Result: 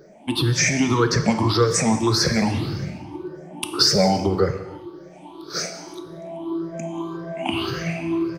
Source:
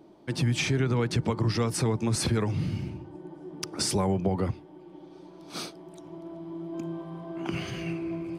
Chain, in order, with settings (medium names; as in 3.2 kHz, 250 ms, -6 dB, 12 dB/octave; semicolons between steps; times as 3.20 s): drifting ripple filter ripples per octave 0.57, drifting +1.8 Hz, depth 23 dB; bass shelf 220 Hz -7 dB; delay 185 ms -20.5 dB; gated-style reverb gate 380 ms falling, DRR 7 dB; trim +4.5 dB